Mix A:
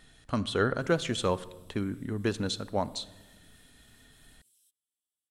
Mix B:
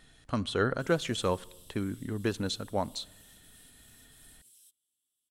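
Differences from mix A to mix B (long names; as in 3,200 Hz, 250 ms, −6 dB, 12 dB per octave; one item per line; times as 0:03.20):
speech: send −8.5 dB
background +8.5 dB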